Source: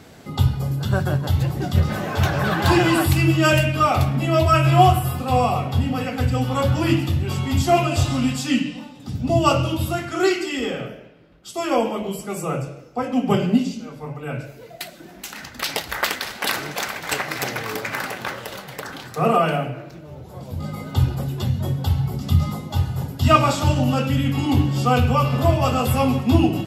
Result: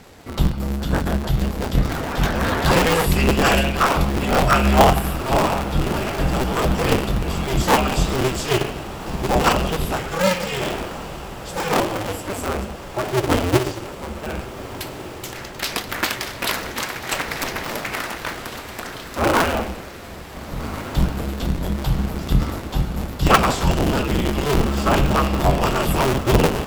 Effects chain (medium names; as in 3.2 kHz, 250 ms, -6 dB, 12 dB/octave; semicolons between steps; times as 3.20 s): cycle switcher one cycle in 2, inverted; echo that smears into a reverb 1515 ms, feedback 71%, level -15 dB